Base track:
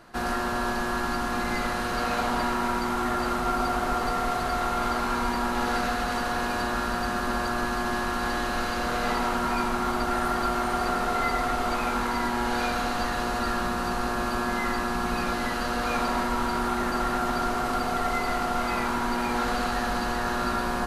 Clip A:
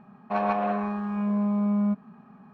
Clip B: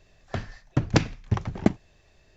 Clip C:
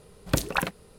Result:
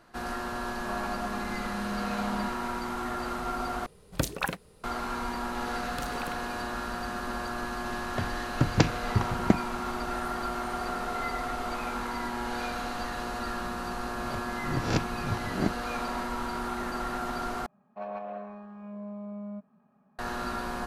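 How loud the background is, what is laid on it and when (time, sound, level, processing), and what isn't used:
base track -6.5 dB
0.54 add A -11 dB
3.86 replace with C -4 dB
5.65 add C -5.5 dB + compressor, threshold -29 dBFS
7.84 add B -1.5 dB + upward compressor, threshold -30 dBFS
14 add B -9.5 dB + spectral swells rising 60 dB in 0.51 s
17.66 replace with A -15.5 dB + bell 590 Hz +11 dB 0.32 oct

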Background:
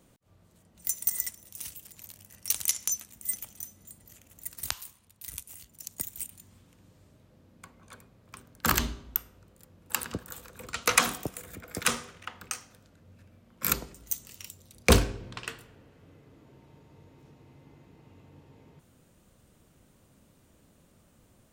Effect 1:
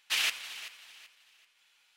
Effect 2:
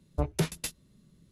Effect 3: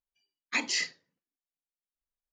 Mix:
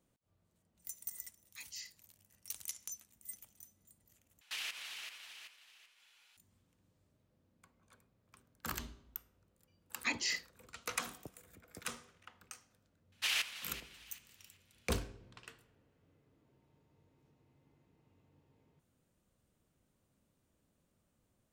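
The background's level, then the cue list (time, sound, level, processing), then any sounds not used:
background -16 dB
1.03 add 3 -13.5 dB + differentiator
4.41 replace with 1 + compressor 2.5:1, threshold -44 dBFS
9.52 add 3 -6 dB
13.12 add 1 -5 dB
not used: 2

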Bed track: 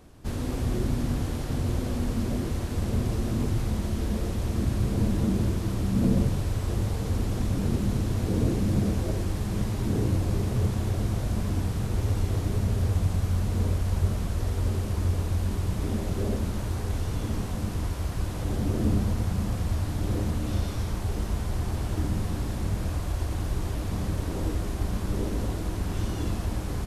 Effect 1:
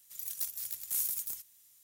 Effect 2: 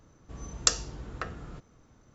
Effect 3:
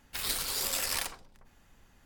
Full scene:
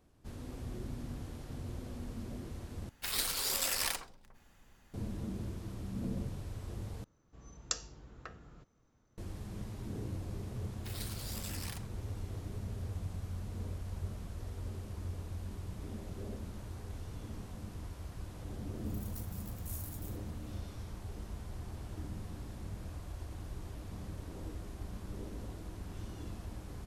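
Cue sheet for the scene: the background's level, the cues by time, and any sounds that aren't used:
bed track -15 dB
2.89 replace with 3 -1.5 dB
7.04 replace with 2 -12 dB
10.71 add 3 -13 dB
18.75 add 1 -15 dB + doubler 39 ms -10 dB

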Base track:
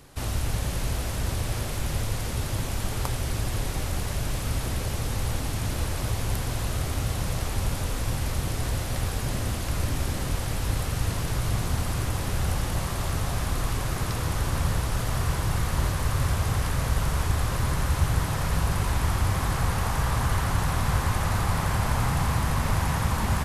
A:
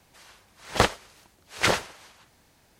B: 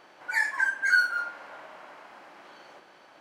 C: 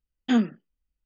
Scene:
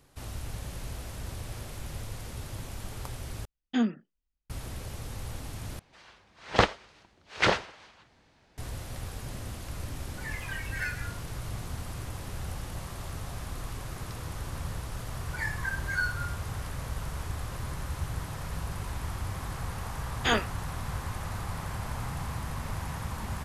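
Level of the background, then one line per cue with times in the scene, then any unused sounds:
base track -10.5 dB
3.45 replace with C -5 dB + downsampling 16000 Hz
5.79 replace with A -1 dB + LPF 4400 Hz
9.89 add B -15.5 dB + echoes that change speed 0.138 s, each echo +3 st, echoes 3
15.05 add B -8.5 dB
19.96 add C -5 dB + spectral limiter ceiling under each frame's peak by 28 dB

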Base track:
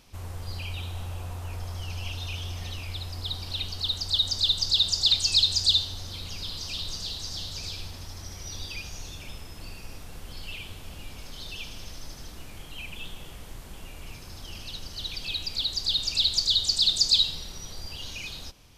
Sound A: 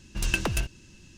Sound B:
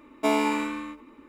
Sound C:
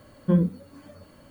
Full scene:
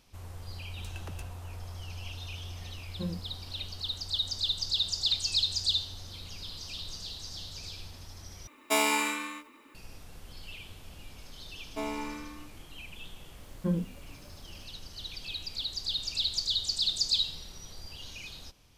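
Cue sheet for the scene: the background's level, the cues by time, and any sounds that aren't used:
base track -6.5 dB
0.62 add A -18 dB + limiter -14 dBFS
2.71 add C -15.5 dB
8.47 replace with B -2 dB + tilt +4 dB/oct
11.53 add B -12 dB
13.36 add C -9 dB

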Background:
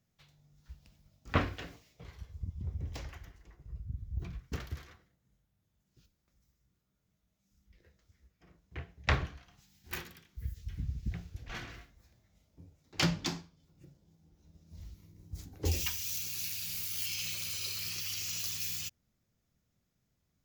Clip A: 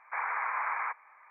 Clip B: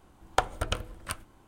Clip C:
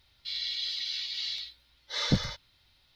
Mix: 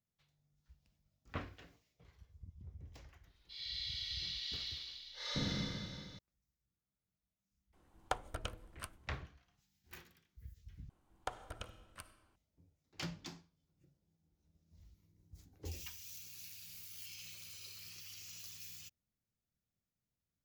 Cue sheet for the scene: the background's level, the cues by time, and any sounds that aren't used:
background -14 dB
3.24 add C -16.5 dB + Schroeder reverb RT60 2.3 s, combs from 26 ms, DRR -8 dB
7.73 add B -12 dB
10.89 replace with B -17 dB + digital reverb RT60 1.1 s, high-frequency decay 0.85×, pre-delay 15 ms, DRR 11.5 dB
not used: A

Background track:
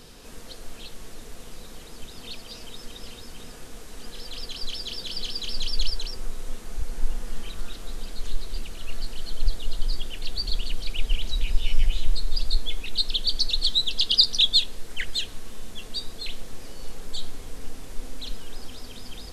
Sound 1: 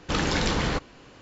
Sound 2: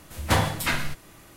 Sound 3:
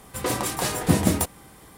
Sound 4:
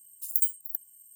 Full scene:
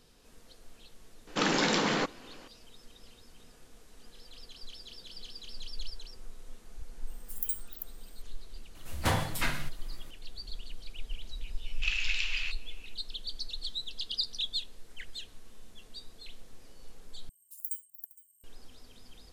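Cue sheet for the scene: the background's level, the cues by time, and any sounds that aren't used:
background track -14.5 dB
1.27 add 1 -1 dB + HPF 180 Hz 24 dB/oct
7.07 add 4 -15 dB + tilt shelf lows -6.5 dB
8.75 add 2 -6.5 dB + hard clip -12.5 dBFS
11.73 add 1 -12 dB + resonant high-pass 2600 Hz, resonance Q 11
17.29 replace with 4 -12 dB + echo 0.463 s -20 dB
not used: 3

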